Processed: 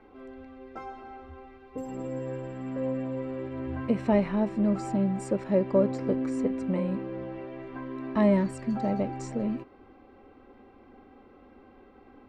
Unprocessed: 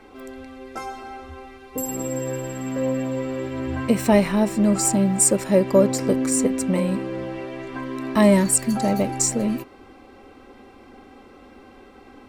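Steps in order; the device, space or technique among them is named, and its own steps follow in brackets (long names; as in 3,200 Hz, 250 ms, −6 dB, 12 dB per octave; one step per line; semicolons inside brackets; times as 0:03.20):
phone in a pocket (low-pass filter 3,800 Hz 12 dB per octave; high-shelf EQ 2,200 Hz −9.5 dB)
level −6.5 dB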